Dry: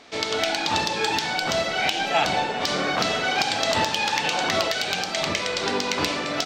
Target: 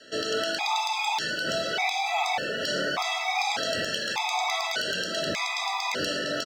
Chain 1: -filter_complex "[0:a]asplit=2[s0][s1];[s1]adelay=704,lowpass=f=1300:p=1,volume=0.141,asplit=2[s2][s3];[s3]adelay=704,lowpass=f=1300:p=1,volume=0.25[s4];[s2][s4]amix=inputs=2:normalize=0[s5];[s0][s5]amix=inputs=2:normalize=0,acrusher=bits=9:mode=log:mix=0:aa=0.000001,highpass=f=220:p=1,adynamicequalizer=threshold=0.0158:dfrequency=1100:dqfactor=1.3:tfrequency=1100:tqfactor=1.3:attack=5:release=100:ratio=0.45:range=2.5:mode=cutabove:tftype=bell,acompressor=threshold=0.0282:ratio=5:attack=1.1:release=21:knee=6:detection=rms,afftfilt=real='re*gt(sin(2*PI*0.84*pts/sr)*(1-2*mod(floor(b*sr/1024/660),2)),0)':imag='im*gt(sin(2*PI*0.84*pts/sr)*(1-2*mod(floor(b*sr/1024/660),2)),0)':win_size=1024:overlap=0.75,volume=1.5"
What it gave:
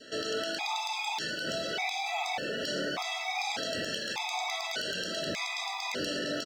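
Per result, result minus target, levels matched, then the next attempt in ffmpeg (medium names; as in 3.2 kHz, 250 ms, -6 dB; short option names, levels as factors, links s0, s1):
compression: peak gain reduction +5.5 dB; 250 Hz band +3.5 dB
-filter_complex "[0:a]asplit=2[s0][s1];[s1]adelay=704,lowpass=f=1300:p=1,volume=0.141,asplit=2[s2][s3];[s3]adelay=704,lowpass=f=1300:p=1,volume=0.25[s4];[s2][s4]amix=inputs=2:normalize=0[s5];[s0][s5]amix=inputs=2:normalize=0,acrusher=bits=9:mode=log:mix=0:aa=0.000001,highpass=f=220:p=1,adynamicequalizer=threshold=0.0158:dfrequency=1100:dqfactor=1.3:tfrequency=1100:tqfactor=1.3:attack=5:release=100:ratio=0.45:range=2.5:mode=cutabove:tftype=bell,acompressor=threshold=0.0668:ratio=5:attack=1.1:release=21:knee=6:detection=rms,afftfilt=real='re*gt(sin(2*PI*0.84*pts/sr)*(1-2*mod(floor(b*sr/1024/660),2)),0)':imag='im*gt(sin(2*PI*0.84*pts/sr)*(1-2*mod(floor(b*sr/1024/660),2)),0)':win_size=1024:overlap=0.75,volume=1.5"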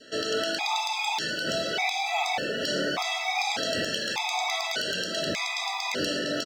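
250 Hz band +3.0 dB
-filter_complex "[0:a]asplit=2[s0][s1];[s1]adelay=704,lowpass=f=1300:p=1,volume=0.141,asplit=2[s2][s3];[s3]adelay=704,lowpass=f=1300:p=1,volume=0.25[s4];[s2][s4]amix=inputs=2:normalize=0[s5];[s0][s5]amix=inputs=2:normalize=0,acrusher=bits=9:mode=log:mix=0:aa=0.000001,highpass=f=220:p=1,adynamicequalizer=threshold=0.0158:dfrequency=290:dqfactor=1.3:tfrequency=290:tqfactor=1.3:attack=5:release=100:ratio=0.45:range=2.5:mode=cutabove:tftype=bell,acompressor=threshold=0.0668:ratio=5:attack=1.1:release=21:knee=6:detection=rms,afftfilt=real='re*gt(sin(2*PI*0.84*pts/sr)*(1-2*mod(floor(b*sr/1024/660),2)),0)':imag='im*gt(sin(2*PI*0.84*pts/sr)*(1-2*mod(floor(b*sr/1024/660),2)),0)':win_size=1024:overlap=0.75,volume=1.5"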